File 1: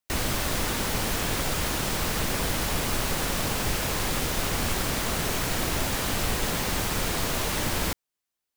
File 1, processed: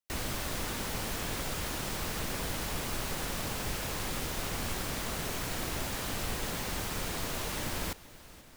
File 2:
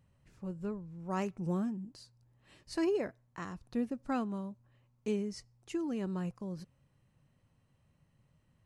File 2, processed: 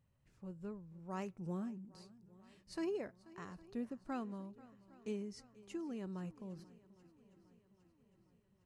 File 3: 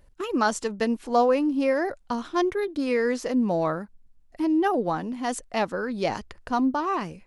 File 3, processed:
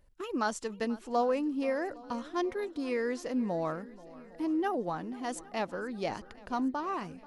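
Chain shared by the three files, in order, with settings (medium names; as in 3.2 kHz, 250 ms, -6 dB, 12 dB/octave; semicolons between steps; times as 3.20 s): shuffle delay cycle 809 ms, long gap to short 1.5:1, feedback 50%, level -20 dB; trim -8 dB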